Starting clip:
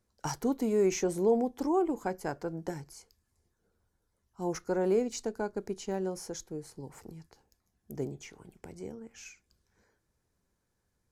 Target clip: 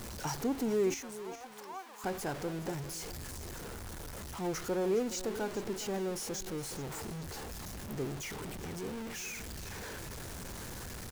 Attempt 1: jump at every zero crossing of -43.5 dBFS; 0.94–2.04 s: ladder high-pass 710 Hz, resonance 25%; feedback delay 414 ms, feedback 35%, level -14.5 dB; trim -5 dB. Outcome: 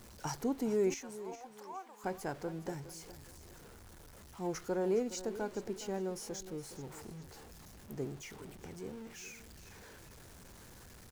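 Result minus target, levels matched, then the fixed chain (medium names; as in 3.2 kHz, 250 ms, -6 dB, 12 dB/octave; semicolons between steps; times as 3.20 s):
jump at every zero crossing: distortion -10 dB
jump at every zero crossing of -32 dBFS; 0.94–2.04 s: ladder high-pass 710 Hz, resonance 25%; feedback delay 414 ms, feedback 35%, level -14.5 dB; trim -5 dB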